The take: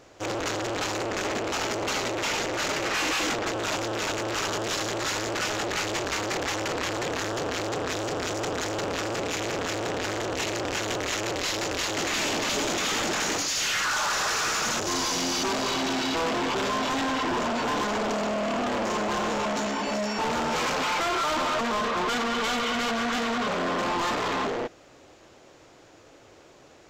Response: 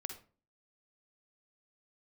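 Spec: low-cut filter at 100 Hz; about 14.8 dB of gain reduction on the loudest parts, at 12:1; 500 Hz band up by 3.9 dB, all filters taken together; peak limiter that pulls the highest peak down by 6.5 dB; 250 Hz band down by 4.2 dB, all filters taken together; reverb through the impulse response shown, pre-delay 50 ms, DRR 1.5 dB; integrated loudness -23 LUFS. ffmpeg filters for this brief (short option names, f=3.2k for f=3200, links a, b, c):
-filter_complex "[0:a]highpass=100,equalizer=f=250:t=o:g=-8.5,equalizer=f=500:t=o:g=7,acompressor=threshold=-38dB:ratio=12,alimiter=level_in=11.5dB:limit=-24dB:level=0:latency=1,volume=-11.5dB,asplit=2[a][b];[1:a]atrim=start_sample=2205,adelay=50[c];[b][c]afir=irnorm=-1:irlink=0,volume=0.5dB[d];[a][d]amix=inputs=2:normalize=0,volume=16.5dB"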